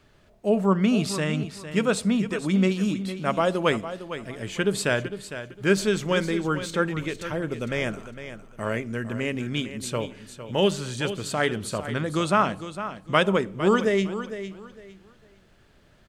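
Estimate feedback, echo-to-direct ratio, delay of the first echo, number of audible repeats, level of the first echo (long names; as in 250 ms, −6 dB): 24%, −11.0 dB, 456 ms, 2, −11.5 dB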